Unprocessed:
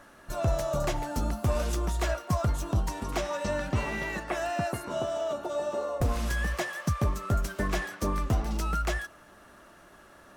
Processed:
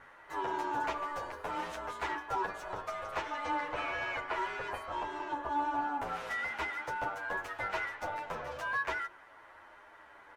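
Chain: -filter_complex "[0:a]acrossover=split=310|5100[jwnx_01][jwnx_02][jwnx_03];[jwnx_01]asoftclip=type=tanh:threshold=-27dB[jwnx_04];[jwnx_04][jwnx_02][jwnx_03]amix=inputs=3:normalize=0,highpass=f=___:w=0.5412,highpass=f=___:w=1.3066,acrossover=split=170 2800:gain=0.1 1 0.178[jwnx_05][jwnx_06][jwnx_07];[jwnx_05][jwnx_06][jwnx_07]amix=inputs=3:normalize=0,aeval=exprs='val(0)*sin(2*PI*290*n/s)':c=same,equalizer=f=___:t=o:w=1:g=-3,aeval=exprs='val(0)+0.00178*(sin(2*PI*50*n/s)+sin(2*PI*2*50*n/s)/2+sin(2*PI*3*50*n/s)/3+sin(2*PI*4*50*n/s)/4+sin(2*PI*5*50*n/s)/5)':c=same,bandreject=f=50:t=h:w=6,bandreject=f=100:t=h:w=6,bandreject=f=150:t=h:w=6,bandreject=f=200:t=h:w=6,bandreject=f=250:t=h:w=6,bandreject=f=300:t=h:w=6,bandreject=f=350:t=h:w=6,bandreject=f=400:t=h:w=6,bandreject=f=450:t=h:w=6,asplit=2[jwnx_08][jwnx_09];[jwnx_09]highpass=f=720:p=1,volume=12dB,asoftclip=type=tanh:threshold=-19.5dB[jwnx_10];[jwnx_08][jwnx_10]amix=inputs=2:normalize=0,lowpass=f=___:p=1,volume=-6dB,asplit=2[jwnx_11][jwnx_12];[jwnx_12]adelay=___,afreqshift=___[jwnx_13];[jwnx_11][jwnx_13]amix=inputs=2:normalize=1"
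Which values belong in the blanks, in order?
60, 60, 250, 7.8k, 9.3, -0.62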